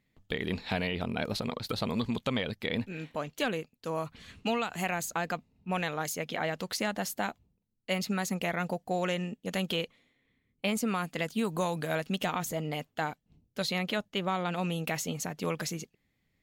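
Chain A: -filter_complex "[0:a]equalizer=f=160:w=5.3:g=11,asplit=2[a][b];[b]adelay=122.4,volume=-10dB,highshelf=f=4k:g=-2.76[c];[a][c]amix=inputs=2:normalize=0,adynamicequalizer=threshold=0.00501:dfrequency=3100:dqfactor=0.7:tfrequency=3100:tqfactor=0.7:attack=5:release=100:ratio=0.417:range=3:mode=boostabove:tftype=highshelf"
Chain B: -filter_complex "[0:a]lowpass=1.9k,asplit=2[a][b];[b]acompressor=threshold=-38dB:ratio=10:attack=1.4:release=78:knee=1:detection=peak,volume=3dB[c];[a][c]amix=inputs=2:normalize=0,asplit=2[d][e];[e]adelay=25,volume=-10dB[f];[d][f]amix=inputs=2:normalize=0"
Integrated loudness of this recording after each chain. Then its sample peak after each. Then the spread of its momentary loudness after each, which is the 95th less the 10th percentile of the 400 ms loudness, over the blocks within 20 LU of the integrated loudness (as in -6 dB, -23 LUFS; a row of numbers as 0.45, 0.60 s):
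-30.0, -31.0 LUFS; -14.0, -15.0 dBFS; 6, 5 LU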